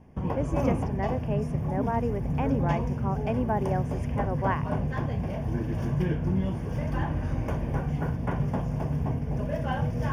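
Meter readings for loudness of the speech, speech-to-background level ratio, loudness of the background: −32.5 LKFS, −3.0 dB, −29.5 LKFS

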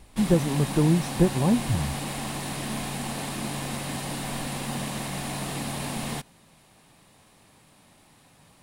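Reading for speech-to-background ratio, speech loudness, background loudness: 7.5 dB, −24.0 LKFS, −31.5 LKFS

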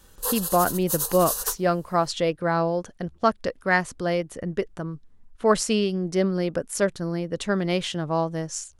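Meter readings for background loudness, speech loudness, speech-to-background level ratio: −27.5 LKFS, −25.0 LKFS, 2.5 dB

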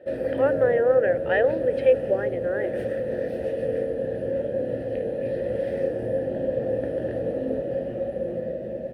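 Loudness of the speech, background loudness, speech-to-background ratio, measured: −23.5 LKFS, −27.5 LKFS, 4.0 dB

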